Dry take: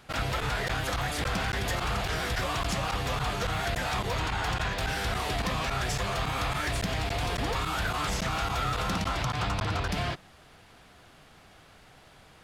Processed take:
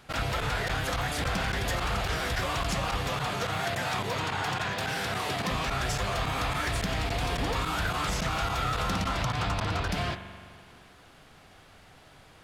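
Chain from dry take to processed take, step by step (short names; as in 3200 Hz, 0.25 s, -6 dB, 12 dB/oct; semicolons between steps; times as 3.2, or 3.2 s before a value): 3.09–5.51 HPF 99 Hz 24 dB/oct; spring tank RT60 2 s, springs 42 ms, chirp 50 ms, DRR 9.5 dB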